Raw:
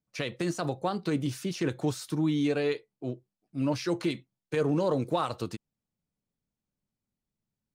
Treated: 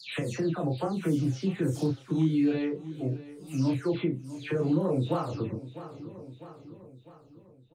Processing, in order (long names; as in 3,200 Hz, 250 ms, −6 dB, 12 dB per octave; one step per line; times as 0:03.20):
every frequency bin delayed by itself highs early, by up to 280 ms
low-shelf EQ 490 Hz +11 dB
double-tracking delay 31 ms −2.5 dB
repeating echo 651 ms, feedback 48%, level −20 dB
downward compressor 1.5 to 1, threshold −41 dBFS, peak gain reduction 10.5 dB
level +1 dB